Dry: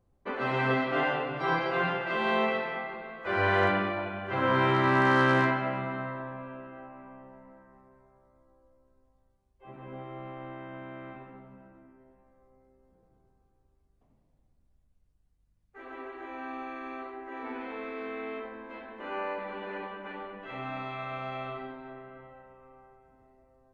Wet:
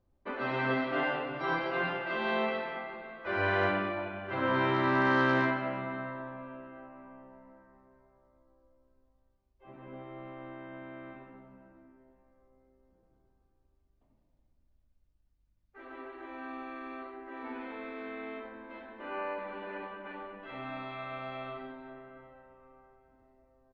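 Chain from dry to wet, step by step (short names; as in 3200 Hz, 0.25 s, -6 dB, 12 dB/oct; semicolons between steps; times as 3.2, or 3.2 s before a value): LPF 5800 Hz 24 dB/oct; comb 3.3 ms, depth 30%; gain -3.5 dB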